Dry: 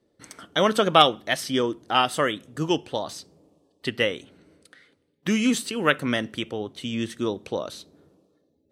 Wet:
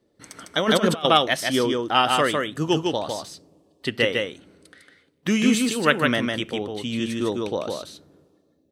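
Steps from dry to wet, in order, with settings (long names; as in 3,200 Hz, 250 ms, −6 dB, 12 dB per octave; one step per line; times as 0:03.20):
single-tap delay 153 ms −3.5 dB
0:00.57–0:01.05: compressor whose output falls as the input rises −22 dBFS, ratio −0.5
level +1.5 dB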